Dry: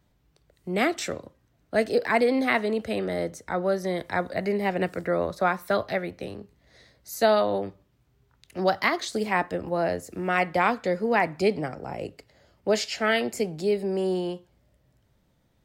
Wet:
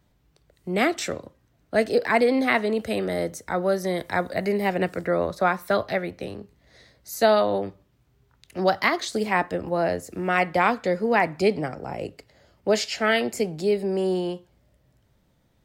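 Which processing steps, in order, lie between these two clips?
0:02.77–0:04.77: high-shelf EQ 8,400 Hz +8.5 dB
level +2 dB

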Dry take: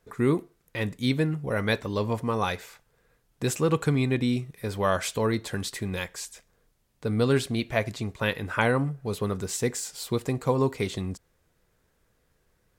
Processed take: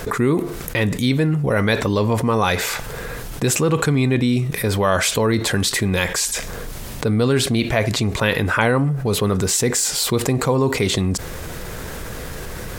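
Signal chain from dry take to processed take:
envelope flattener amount 70%
level +4 dB

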